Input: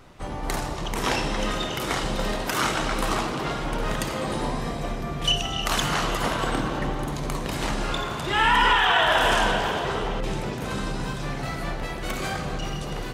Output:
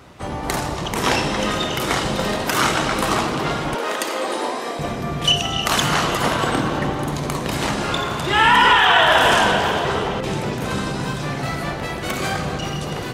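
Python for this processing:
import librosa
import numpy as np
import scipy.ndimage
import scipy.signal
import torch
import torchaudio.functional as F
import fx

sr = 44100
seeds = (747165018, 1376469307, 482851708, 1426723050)

y = fx.highpass(x, sr, hz=fx.steps((0.0, 53.0), (3.75, 310.0), (4.79, 58.0)), slope=24)
y = y * librosa.db_to_amplitude(6.0)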